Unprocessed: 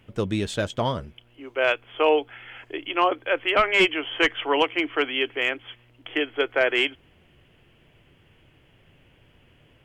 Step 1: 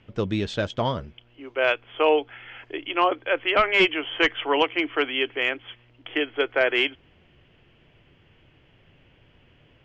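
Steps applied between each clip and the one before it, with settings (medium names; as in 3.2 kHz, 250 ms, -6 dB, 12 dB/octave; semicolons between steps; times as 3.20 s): low-pass 5.8 kHz 24 dB/octave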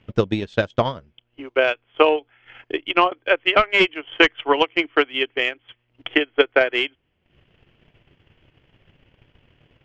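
transient shaper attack +11 dB, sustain -12 dB; trim -1.5 dB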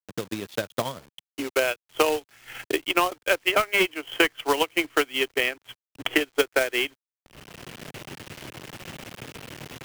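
fade-in on the opening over 2.10 s; companded quantiser 4-bit; three bands compressed up and down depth 70%; trim -4 dB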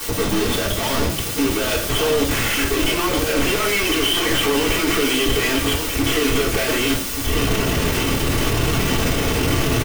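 one-bit comparator; delay 1182 ms -7.5 dB; reverberation RT60 0.50 s, pre-delay 3 ms, DRR -6 dB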